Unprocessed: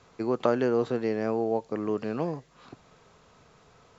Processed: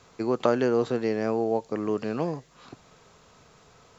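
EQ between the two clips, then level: high shelf 5200 Hz +7.5 dB; +1.5 dB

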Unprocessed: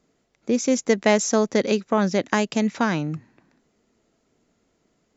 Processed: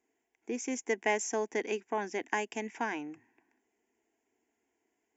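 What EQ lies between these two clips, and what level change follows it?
HPF 410 Hz 6 dB/oct; fixed phaser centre 840 Hz, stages 8; -6.0 dB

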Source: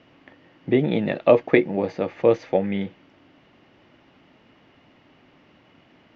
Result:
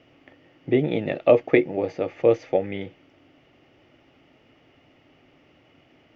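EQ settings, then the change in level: thirty-one-band EQ 200 Hz -11 dB, 1000 Hz -9 dB, 1600 Hz -6 dB, 4000 Hz -7 dB; 0.0 dB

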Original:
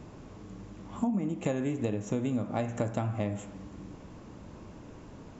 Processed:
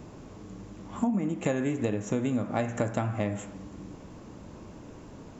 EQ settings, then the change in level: bell 390 Hz +2.5 dB 2.9 oct; dynamic EQ 1700 Hz, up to +6 dB, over -54 dBFS, Q 1.3; high shelf 6500 Hz +7.5 dB; 0.0 dB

